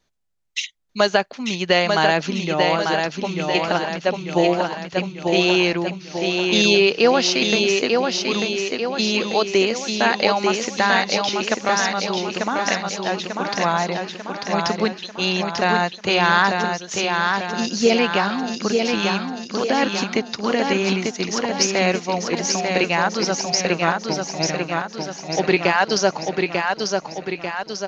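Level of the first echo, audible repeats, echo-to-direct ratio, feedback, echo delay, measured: -4.0 dB, 6, -2.5 dB, 54%, 0.893 s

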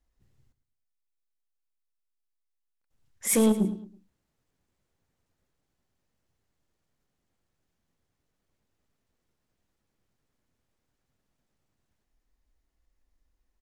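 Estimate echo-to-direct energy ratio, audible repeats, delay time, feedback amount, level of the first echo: -13.0 dB, 3, 0.108 s, 36%, -13.5 dB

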